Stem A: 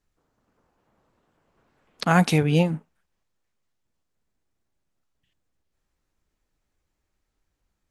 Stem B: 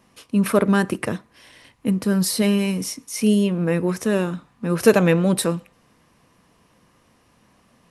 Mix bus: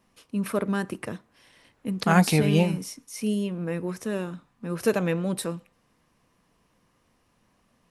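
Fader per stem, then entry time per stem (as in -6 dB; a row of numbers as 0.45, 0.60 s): -1.5, -9.0 dB; 0.00, 0.00 s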